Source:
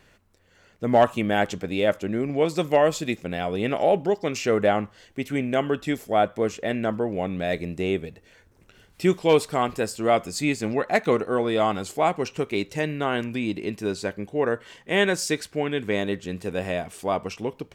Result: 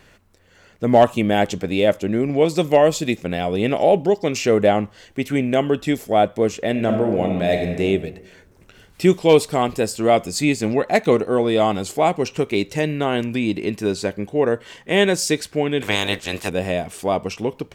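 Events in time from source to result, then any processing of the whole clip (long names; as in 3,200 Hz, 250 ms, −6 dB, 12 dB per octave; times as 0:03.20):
0:06.71–0:07.83: thrown reverb, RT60 1.1 s, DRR 3.5 dB
0:15.80–0:16.48: ceiling on every frequency bin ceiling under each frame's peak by 23 dB
whole clip: dynamic equaliser 1,400 Hz, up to −7 dB, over −39 dBFS, Q 1.3; level +6 dB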